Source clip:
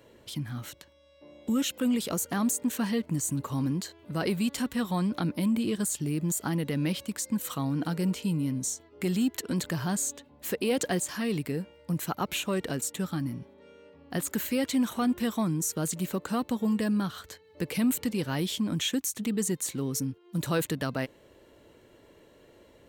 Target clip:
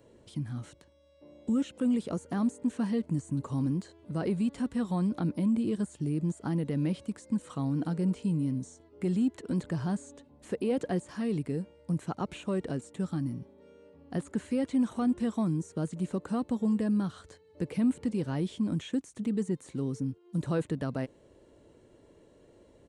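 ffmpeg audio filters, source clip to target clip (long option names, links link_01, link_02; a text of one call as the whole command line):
ffmpeg -i in.wav -filter_complex "[0:a]aresample=22050,aresample=44100,equalizer=frequency=2400:width_type=o:width=2.9:gain=-9.5,acrossover=split=2900[link_01][link_02];[link_02]acompressor=threshold=-53dB:ratio=4:attack=1:release=60[link_03];[link_01][link_03]amix=inputs=2:normalize=0" out.wav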